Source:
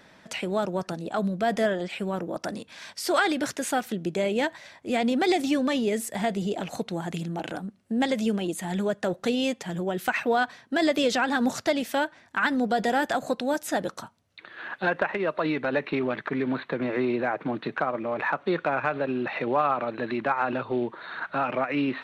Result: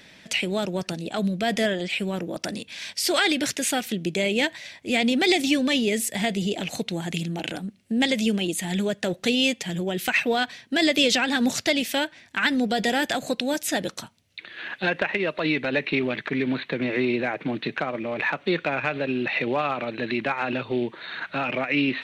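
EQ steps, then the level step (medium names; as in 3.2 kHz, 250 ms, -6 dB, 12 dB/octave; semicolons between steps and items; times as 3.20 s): tilt shelf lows +3.5 dB, about 660 Hz; resonant high shelf 1.7 kHz +10.5 dB, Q 1.5; 0.0 dB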